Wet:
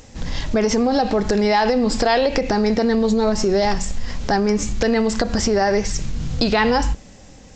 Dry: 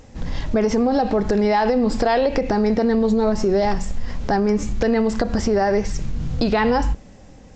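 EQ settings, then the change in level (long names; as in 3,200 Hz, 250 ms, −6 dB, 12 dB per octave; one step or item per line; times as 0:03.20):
high-shelf EQ 2,400 Hz +10 dB
0.0 dB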